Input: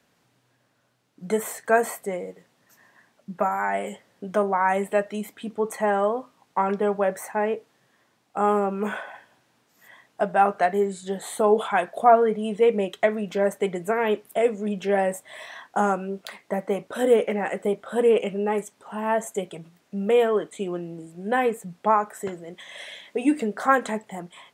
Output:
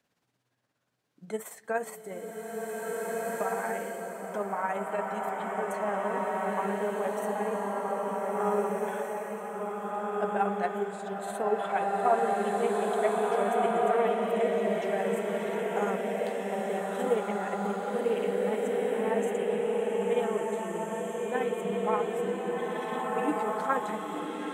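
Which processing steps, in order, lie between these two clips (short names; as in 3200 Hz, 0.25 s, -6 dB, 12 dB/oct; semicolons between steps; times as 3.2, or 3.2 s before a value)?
tremolo 17 Hz, depth 55%; bloom reverb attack 1.85 s, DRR -4.5 dB; gain -8.5 dB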